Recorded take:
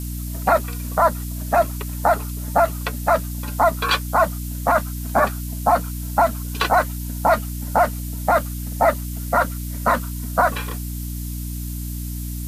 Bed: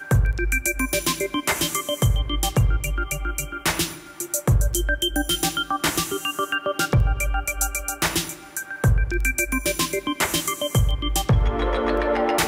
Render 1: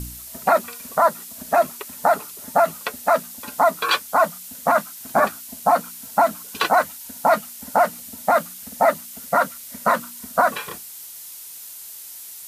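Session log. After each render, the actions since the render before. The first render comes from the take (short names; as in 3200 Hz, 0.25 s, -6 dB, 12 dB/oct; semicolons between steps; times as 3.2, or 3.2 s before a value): de-hum 60 Hz, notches 5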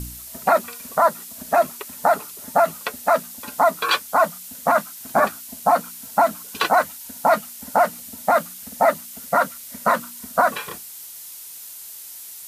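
nothing audible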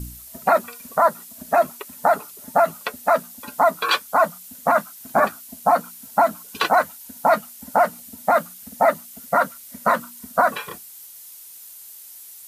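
denoiser 6 dB, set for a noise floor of -39 dBFS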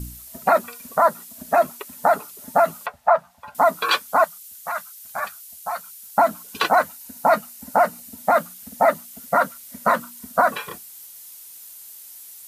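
2.86–3.55 EQ curve 130 Hz 0 dB, 290 Hz -24 dB, 750 Hz +5 dB, 13000 Hz -24 dB; 4.24–6.18 passive tone stack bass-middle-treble 10-0-10; 6.88–8.13 notch 3300 Hz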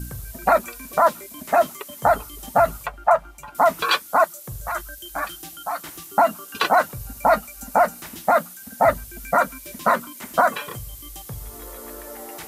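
add bed -17.5 dB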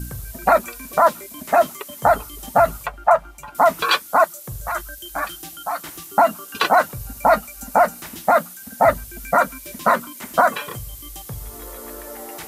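gain +2 dB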